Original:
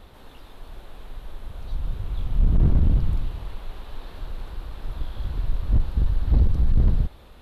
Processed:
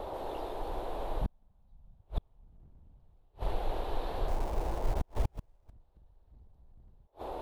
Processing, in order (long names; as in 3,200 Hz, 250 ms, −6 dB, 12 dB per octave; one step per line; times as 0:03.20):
0:04.28–0:05.71: hold until the input has moved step −38 dBFS
noise in a band 320–920 Hz −40 dBFS
0:01.21–0:02.01: low shelf with overshoot 270 Hz +10 dB, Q 3
gate with flip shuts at −18 dBFS, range −40 dB